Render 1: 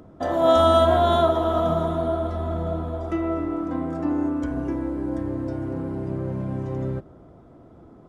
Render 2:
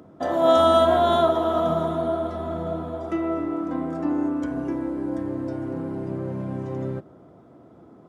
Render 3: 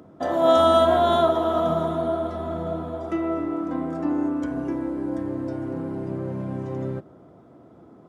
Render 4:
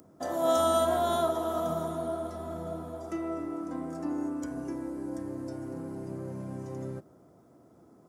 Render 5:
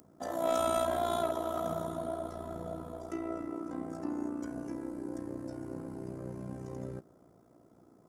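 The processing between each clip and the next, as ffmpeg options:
-af "highpass=130"
-af anull
-af "aexciter=amount=4.9:drive=5.8:freq=4.9k,volume=-8.5dB"
-af "asoftclip=type=tanh:threshold=-19.5dB,tremolo=f=59:d=0.71"

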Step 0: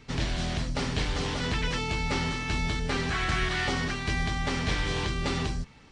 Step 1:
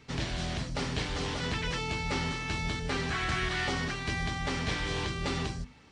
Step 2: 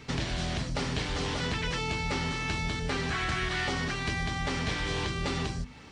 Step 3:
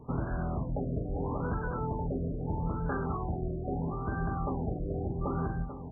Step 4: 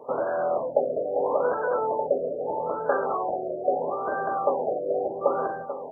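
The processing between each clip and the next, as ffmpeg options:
-af "highpass=43,bandreject=f=50:t=h:w=6,bandreject=f=100:t=h:w=6,bandreject=f=150:t=h:w=6,bandreject=f=200:t=h:w=6,bandreject=f=250:t=h:w=6,volume=-2.5dB"
-af "acompressor=threshold=-39dB:ratio=2.5,volume=8dB"
-filter_complex "[0:a]asplit=2[a][b];[b]adelay=1224,volume=-9dB,highshelf=f=4k:g=-27.6[c];[a][c]amix=inputs=2:normalize=0,afftfilt=real='re*lt(b*sr/1024,710*pow(1700/710,0.5+0.5*sin(2*PI*0.77*pts/sr)))':imag='im*lt(b*sr/1024,710*pow(1700/710,0.5+0.5*sin(2*PI*0.77*pts/sr)))':win_size=1024:overlap=0.75"
-af "highpass=f=550:t=q:w=4.9,volume=6.5dB"

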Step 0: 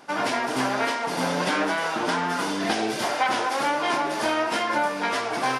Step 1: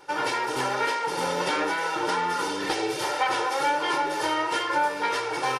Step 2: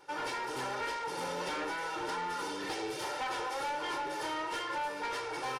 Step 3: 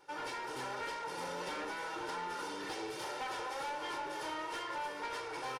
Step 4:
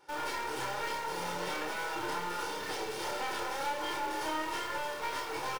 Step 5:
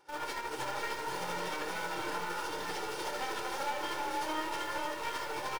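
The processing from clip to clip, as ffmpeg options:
-af "aecho=1:1:2.2:0.98,volume=-4dB"
-af "asoftclip=type=tanh:threshold=-23dB,volume=-7.5dB"
-filter_complex "[0:a]asplit=7[a][b][c][d][e][f][g];[b]adelay=298,afreqshift=43,volume=-11dB[h];[c]adelay=596,afreqshift=86,volume=-16.2dB[i];[d]adelay=894,afreqshift=129,volume=-21.4dB[j];[e]adelay=1192,afreqshift=172,volume=-26.6dB[k];[f]adelay=1490,afreqshift=215,volume=-31.8dB[l];[g]adelay=1788,afreqshift=258,volume=-37dB[m];[a][h][i][j][k][l][m]amix=inputs=7:normalize=0,volume=-4.5dB"
-filter_complex "[0:a]asplit=2[a][b];[b]acrusher=bits=4:dc=4:mix=0:aa=0.000001,volume=-4.5dB[c];[a][c]amix=inputs=2:normalize=0,asplit=2[d][e];[e]adelay=29,volume=-2.5dB[f];[d][f]amix=inputs=2:normalize=0"
-af "tremolo=f=13:d=0.49,aecho=1:1:499:0.596"

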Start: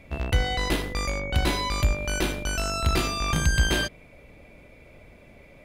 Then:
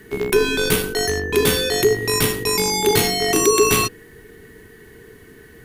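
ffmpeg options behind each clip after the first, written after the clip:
-af "acontrast=46,afreqshift=-480,aemphasis=mode=production:type=50fm"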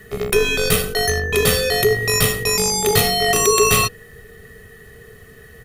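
-af "aecho=1:1:1.6:0.84"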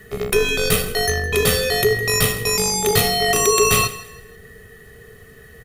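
-af "aecho=1:1:161|322|483:0.141|0.0438|0.0136,volume=-1dB"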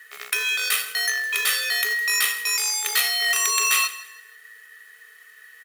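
-af "acrusher=bits=4:mode=log:mix=0:aa=0.000001,highpass=f=1.6k:t=q:w=1.5,volume=-3dB"

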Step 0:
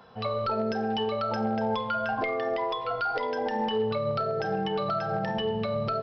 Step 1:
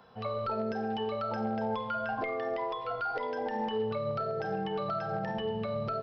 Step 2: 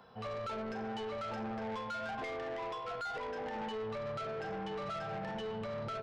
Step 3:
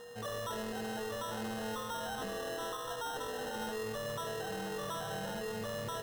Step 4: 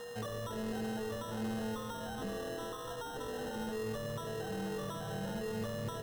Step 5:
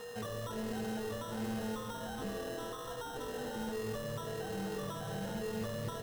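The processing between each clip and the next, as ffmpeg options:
-filter_complex "[0:a]acrossover=split=2700[a][b];[b]acompressor=threshold=-47dB:ratio=4:attack=1:release=60[c];[a][c]amix=inputs=2:normalize=0,volume=-4.5dB"
-af "asoftclip=type=tanh:threshold=-35.5dB,volume=-1dB"
-af "aeval=exprs='val(0)+0.00447*sin(2*PI*480*n/s)':c=same,acrusher=samples=19:mix=1:aa=0.000001"
-filter_complex "[0:a]acrossover=split=390[a][b];[b]acompressor=threshold=-46dB:ratio=6[c];[a][c]amix=inputs=2:normalize=0,volume=4.5dB"
-af "acrusher=bits=4:mode=log:mix=0:aa=0.000001,flanger=delay=0.7:depth=7.7:regen=-69:speed=1.3:shape=triangular,volume=4dB"

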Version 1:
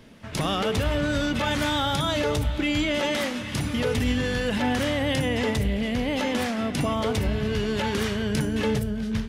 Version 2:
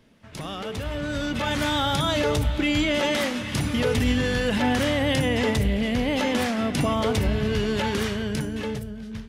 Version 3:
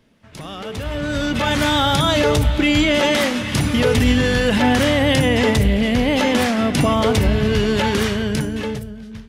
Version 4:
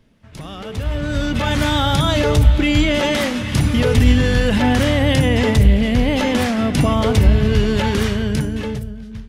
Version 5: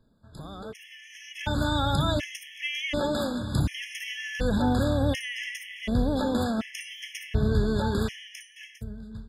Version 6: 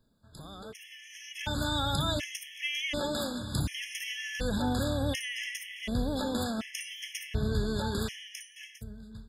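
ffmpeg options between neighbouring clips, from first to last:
-af "dynaudnorm=f=200:g=13:m=11.5dB,volume=-8.5dB"
-af "dynaudnorm=f=240:g=7:m=7dB"
-af "lowshelf=f=120:g=11,volume=-2dB"
-af "afftfilt=real='re*gt(sin(2*PI*0.68*pts/sr)*(1-2*mod(floor(b*sr/1024/1700),2)),0)':imag='im*gt(sin(2*PI*0.68*pts/sr)*(1-2*mod(floor(b*sr/1024/1700),2)),0)':win_size=1024:overlap=0.75,volume=-8dB"
-af "highshelf=f=2.8k:g=9.5,volume=-6dB"

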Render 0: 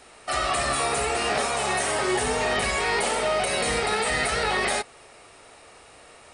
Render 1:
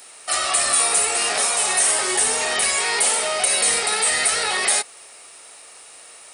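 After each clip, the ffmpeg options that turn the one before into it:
-af "aemphasis=mode=production:type=riaa"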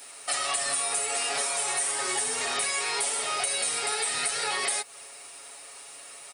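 -af "aecho=1:1:7.2:0.73,acompressor=threshold=-22dB:ratio=6,acrusher=bits=8:mix=0:aa=0.5,volume=-3.5dB"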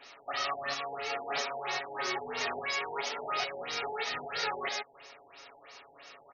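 -af "afftfilt=real='re*lt(b*sr/1024,900*pow(6800/900,0.5+0.5*sin(2*PI*3*pts/sr)))':imag='im*lt(b*sr/1024,900*pow(6800/900,0.5+0.5*sin(2*PI*3*pts/sr)))':win_size=1024:overlap=0.75,volume=-1.5dB"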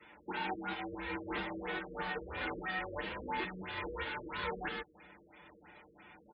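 -af "highpass=f=290:t=q:w=0.5412,highpass=f=290:t=q:w=1.307,lowpass=f=3.6k:t=q:w=0.5176,lowpass=f=3.6k:t=q:w=0.7071,lowpass=f=3.6k:t=q:w=1.932,afreqshift=-370,afftfilt=real='re*gte(hypot(re,im),0.00224)':imag='im*gte(hypot(re,im),0.00224)':win_size=1024:overlap=0.75,highpass=f=97:p=1,volume=-3.5dB"

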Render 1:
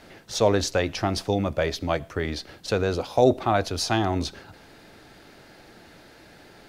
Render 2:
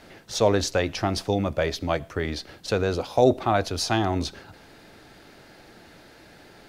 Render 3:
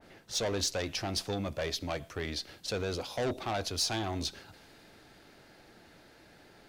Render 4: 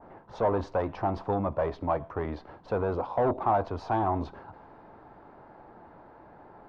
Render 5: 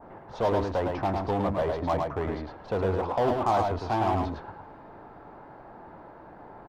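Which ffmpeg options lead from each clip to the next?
-af anull
-af "asoftclip=type=tanh:threshold=-20dB,adynamicequalizer=threshold=0.00501:dfrequency=2200:dqfactor=0.7:tfrequency=2200:tqfactor=0.7:attack=5:release=100:ratio=0.375:range=3.5:mode=boostabove:tftype=highshelf,volume=-7.5dB"
-af "lowpass=f=980:t=q:w=3.5,volume=4dB"
-filter_complex "[0:a]asplit=2[a][b];[b]aeval=exprs='0.0316*(abs(mod(val(0)/0.0316+3,4)-2)-1)':c=same,volume=-8dB[c];[a][c]amix=inputs=2:normalize=0,aecho=1:1:107:0.631"

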